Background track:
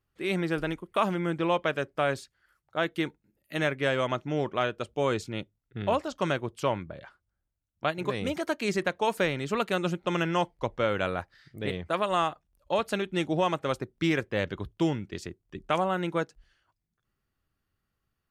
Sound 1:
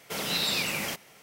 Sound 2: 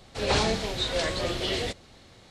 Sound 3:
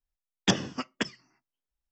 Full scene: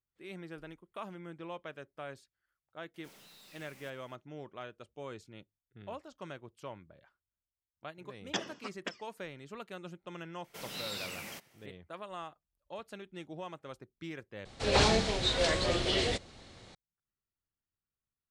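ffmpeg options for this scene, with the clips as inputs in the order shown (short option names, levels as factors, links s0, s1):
-filter_complex "[1:a]asplit=2[s0][s1];[0:a]volume=0.141[s2];[s0]aeval=exprs='(tanh(126*val(0)+0.1)-tanh(0.1))/126':c=same[s3];[3:a]bass=f=250:g=-14,treble=f=4000:g=-3[s4];[2:a]aresample=22050,aresample=44100[s5];[s2]asplit=2[s6][s7];[s6]atrim=end=14.454[s8];[s5]atrim=end=2.3,asetpts=PTS-STARTPTS,volume=0.891[s9];[s7]atrim=start=16.746[s10];[s3]atrim=end=1.22,asetpts=PTS-STARTPTS,volume=0.178,afade=t=in:d=0.004:c=hsin,afade=t=out:st=1.216:d=0.004:c=hsin,adelay=2940[s11];[s4]atrim=end=1.91,asetpts=PTS-STARTPTS,volume=0.398,afade=t=in:d=0.004:c=hsin,afade=t=out:st=1.906:d=0.004:c=hsin,adelay=346626S[s12];[s1]atrim=end=1.22,asetpts=PTS-STARTPTS,volume=0.237,afade=t=in:d=0.004:c=hsin,afade=t=out:st=1.216:d=0.004:c=hsin,adelay=10440[s13];[s8][s9]acrossfade=d=0.004:c1=hsin:c2=hsin[s14];[s14][s10]acrossfade=d=0.004:c1=hsin:c2=hsin[s15];[s15][s11][s12][s13]amix=inputs=4:normalize=0"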